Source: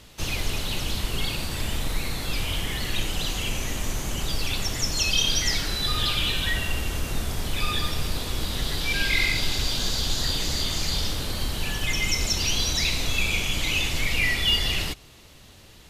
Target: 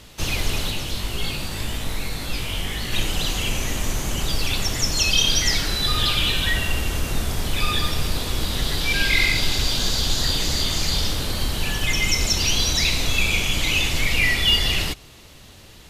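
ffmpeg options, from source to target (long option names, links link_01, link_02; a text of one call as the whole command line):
ffmpeg -i in.wav -filter_complex "[0:a]asplit=3[link_01][link_02][link_03];[link_01]afade=type=out:start_time=0.7:duration=0.02[link_04];[link_02]flanger=delay=17:depth=4.1:speed=1.7,afade=type=in:start_time=0.7:duration=0.02,afade=type=out:start_time=2.91:duration=0.02[link_05];[link_03]afade=type=in:start_time=2.91:duration=0.02[link_06];[link_04][link_05][link_06]amix=inputs=3:normalize=0,volume=4dB" out.wav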